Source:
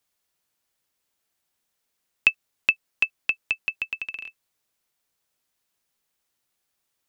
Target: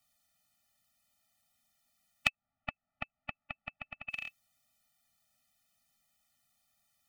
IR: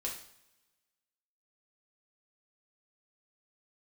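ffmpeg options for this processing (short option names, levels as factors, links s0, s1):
-filter_complex "[0:a]acompressor=threshold=0.0562:ratio=6,asettb=1/sr,asplit=3[s0][s1][s2];[s0]atrim=end=2.284[s3];[s1]atrim=start=2.28:end=4.09,asetpts=PTS-STARTPTS,afade=t=in:d=0.004:c=qsin,afade=t=out:st=1.806:d=0.004:c=qsin,lowpass=1300[s4];[s2]atrim=start=4.086[s5];[s3][s4]acrossfade=d=0.004:c1=hsin:c2=qsin[s6];[s6][s5]acrossfade=d=0.004:c1=qsin:c2=hsin,afftfilt=real='re*eq(mod(floor(b*sr/1024/290),2),0)':imag='im*eq(mod(floor(b*sr/1024/290),2),0)':win_size=1024:overlap=0.75,volume=1.68"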